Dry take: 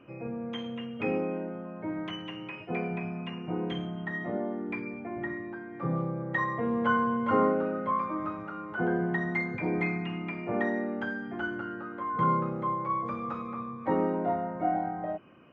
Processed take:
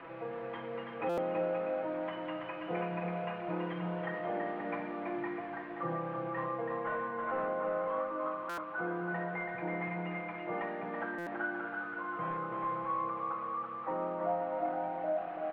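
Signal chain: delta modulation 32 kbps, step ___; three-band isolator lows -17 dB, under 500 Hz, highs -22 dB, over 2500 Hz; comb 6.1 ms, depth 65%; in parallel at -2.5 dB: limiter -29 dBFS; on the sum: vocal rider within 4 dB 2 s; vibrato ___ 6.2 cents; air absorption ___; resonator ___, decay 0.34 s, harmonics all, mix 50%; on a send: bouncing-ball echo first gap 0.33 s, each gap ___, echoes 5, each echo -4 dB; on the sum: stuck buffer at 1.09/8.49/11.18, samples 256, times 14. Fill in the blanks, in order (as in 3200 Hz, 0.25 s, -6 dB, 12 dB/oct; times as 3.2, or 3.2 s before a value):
-39.5 dBFS, 4 Hz, 490 m, 89 Hz, 0.6×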